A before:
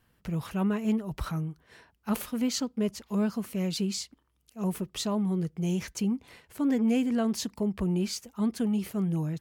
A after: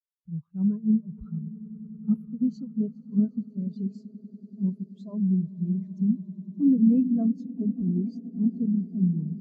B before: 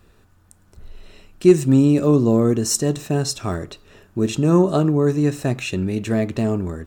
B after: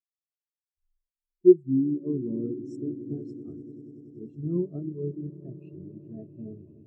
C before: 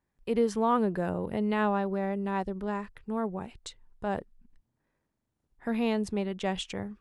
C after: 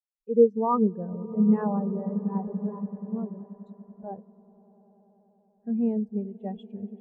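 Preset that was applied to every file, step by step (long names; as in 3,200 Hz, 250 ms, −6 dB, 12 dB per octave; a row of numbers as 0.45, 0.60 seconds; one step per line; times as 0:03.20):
echo that builds up and dies away 96 ms, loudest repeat 8, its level −13 dB
every bin expanded away from the loudest bin 2.5 to 1
loudness normalisation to −27 LKFS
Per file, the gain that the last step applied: +4.0, −3.0, +6.0 decibels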